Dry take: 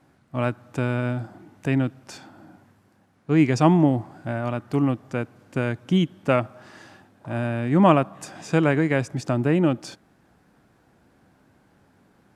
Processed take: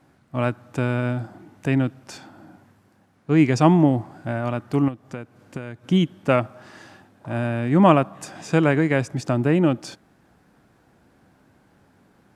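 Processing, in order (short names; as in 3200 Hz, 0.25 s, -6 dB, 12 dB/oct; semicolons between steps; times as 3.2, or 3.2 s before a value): 4.88–5.84 compressor 6:1, threshold -31 dBFS, peak gain reduction 12 dB; gain +1.5 dB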